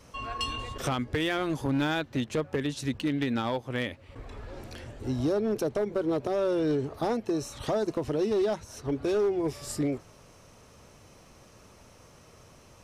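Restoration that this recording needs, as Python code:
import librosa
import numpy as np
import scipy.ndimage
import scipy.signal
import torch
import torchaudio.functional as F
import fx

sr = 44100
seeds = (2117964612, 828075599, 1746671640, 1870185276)

y = fx.fix_declip(x, sr, threshold_db=-21.5)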